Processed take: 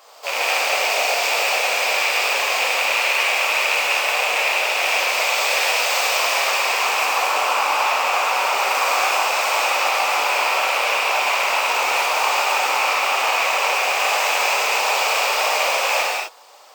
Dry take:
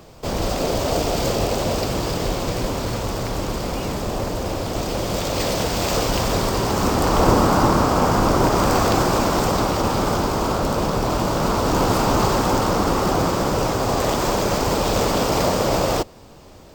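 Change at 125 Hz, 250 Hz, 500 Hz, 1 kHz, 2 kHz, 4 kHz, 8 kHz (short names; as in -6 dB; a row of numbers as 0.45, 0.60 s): under -40 dB, -25.5 dB, -4.5 dB, +2.5 dB, +12.5 dB, +7.0 dB, +3.5 dB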